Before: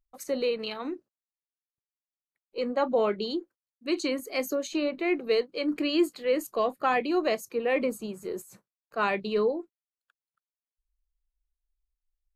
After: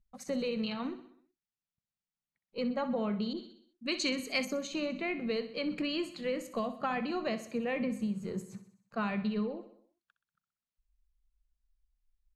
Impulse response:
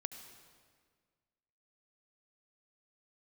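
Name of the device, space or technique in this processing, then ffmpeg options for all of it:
jukebox: -filter_complex "[0:a]lowpass=6900,lowshelf=frequency=260:width_type=q:width=3:gain=8,acompressor=threshold=-28dB:ratio=5,aecho=1:1:63|126|189|252|315|378:0.224|0.123|0.0677|0.0372|0.0205|0.0113,asettb=1/sr,asplit=3[link_01][link_02][link_03];[link_01]atrim=end=3.334[link_04];[link_02]atrim=start=3.33:end=4.45,asetpts=PTS-STARTPTS,afade=type=in:duration=0.004:curve=qsin,afade=type=out:start_time=1.116:duration=0.004:curve=qsin,adynamicequalizer=threshold=0.00316:dfrequency=1600:dqfactor=0.7:tfrequency=1600:tqfactor=0.7:attack=5:release=100:ratio=0.375:range=3.5:mode=boostabove:tftype=highshelf[link_05];[link_03]atrim=start=4.446[link_06];[link_04][link_05]acrossfade=duration=0.004:curve1=hsin:curve2=qsin[link_07];[link_07][link_06]acrossfade=duration=0.004:curve1=qsin:curve2=hsin,volume=-2dB"

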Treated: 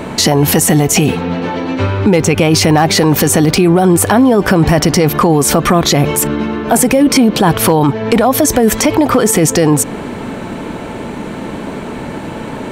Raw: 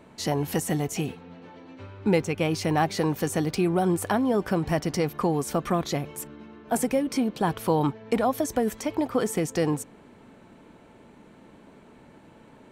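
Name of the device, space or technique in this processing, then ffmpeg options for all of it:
loud club master: -af "acompressor=threshold=-29dB:ratio=2,asoftclip=type=hard:threshold=-20dB,alimiter=level_in=29dB:limit=-1dB:release=50:level=0:latency=1,volume=-1dB"

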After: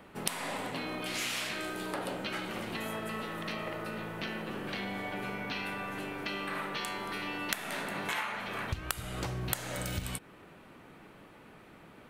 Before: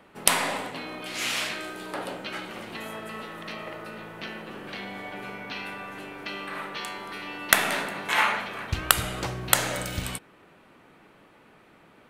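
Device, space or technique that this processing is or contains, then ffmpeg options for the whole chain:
ASMR close-microphone chain: -af "lowshelf=frequency=210:gain=6,acompressor=threshold=-32dB:ratio=8,highshelf=frequency=11000:gain=5"

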